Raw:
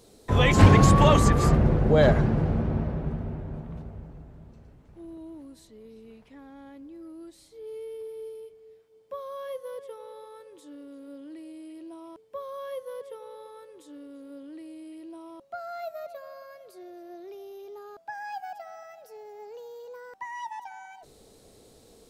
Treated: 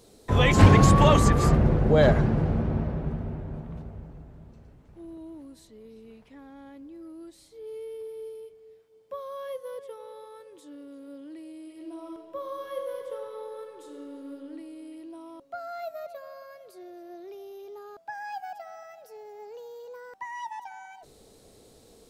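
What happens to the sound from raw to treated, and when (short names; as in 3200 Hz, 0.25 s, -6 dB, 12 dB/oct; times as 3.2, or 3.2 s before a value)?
11.61–14.33 reverb throw, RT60 2.8 s, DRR 1.5 dB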